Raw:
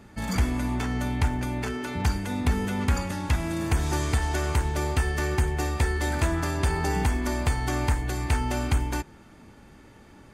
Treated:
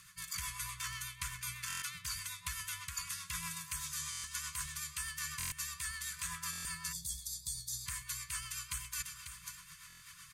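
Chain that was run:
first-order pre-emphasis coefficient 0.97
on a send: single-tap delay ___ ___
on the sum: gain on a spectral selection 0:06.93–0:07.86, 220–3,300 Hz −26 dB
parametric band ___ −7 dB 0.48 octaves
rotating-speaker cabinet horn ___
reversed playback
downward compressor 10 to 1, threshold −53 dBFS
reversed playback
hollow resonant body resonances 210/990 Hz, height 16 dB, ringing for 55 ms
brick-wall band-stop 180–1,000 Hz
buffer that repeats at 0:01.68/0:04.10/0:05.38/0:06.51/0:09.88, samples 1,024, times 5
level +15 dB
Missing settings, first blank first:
545 ms, −19 dB, 330 Hz, 8 Hz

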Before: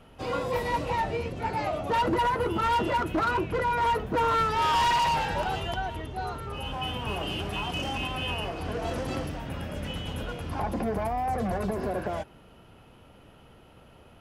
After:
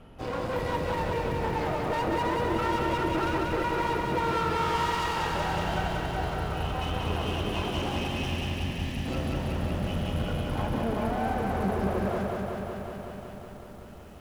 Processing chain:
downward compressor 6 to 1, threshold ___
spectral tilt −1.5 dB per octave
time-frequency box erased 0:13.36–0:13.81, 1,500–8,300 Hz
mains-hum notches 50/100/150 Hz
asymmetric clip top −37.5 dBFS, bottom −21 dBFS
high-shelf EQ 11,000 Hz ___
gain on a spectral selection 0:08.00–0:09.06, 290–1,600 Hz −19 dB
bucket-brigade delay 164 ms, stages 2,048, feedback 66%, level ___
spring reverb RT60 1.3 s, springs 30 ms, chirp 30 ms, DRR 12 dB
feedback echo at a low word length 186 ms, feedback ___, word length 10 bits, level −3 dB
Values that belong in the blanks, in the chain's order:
−26 dBFS, +2.5 dB, −14 dB, 80%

